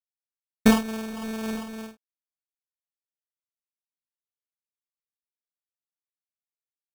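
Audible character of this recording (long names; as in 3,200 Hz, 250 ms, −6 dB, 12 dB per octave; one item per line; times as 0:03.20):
a quantiser's noise floor 10 bits, dither none
phaser sweep stages 6, 2.3 Hz, lowest notch 540–3,100 Hz
aliases and images of a low sample rate 2,000 Hz, jitter 0%
amplitude modulation by smooth noise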